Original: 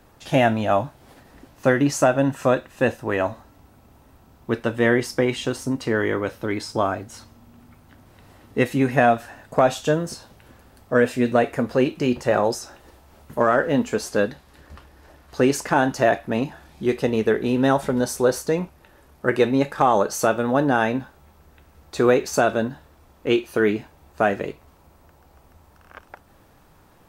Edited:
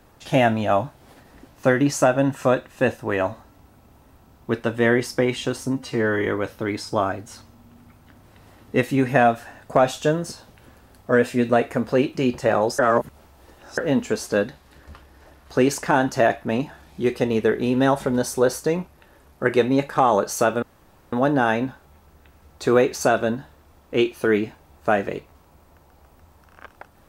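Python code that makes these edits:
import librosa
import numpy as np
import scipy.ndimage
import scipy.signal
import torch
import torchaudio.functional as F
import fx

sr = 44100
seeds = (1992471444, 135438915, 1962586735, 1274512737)

y = fx.edit(x, sr, fx.stretch_span(start_s=5.74, length_s=0.35, factor=1.5),
    fx.reverse_span(start_s=12.61, length_s=0.99),
    fx.insert_room_tone(at_s=20.45, length_s=0.5), tone=tone)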